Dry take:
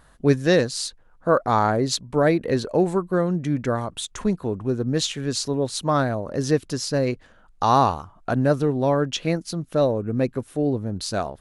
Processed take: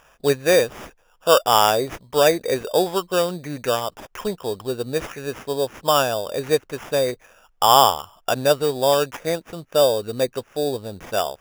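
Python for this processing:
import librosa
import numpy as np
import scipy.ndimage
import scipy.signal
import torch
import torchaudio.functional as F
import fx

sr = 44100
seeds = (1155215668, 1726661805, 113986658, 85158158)

y = fx.band_shelf(x, sr, hz=940.0, db=13.0, octaves=2.7)
y = fx.spec_box(y, sr, start_s=5.21, length_s=0.96, low_hz=1800.0, high_hz=6200.0, gain_db=-7)
y = fx.sample_hold(y, sr, seeds[0], rate_hz=4200.0, jitter_pct=0)
y = y * 10.0 ** (-8.5 / 20.0)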